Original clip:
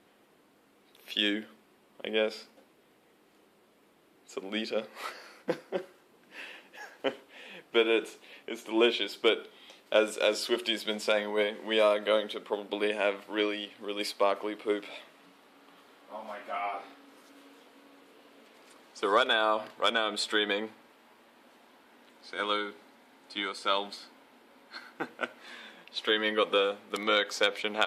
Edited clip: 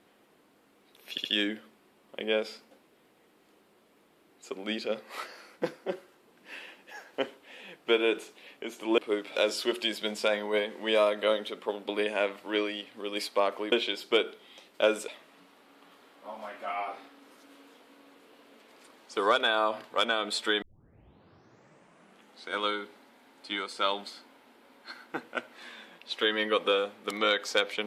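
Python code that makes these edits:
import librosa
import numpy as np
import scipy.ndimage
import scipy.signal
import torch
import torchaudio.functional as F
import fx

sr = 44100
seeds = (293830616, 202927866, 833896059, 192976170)

y = fx.edit(x, sr, fx.stutter(start_s=1.11, slice_s=0.07, count=3),
    fx.swap(start_s=8.84, length_s=1.36, other_s=14.56, other_length_s=0.38),
    fx.tape_start(start_s=20.48, length_s=1.87), tone=tone)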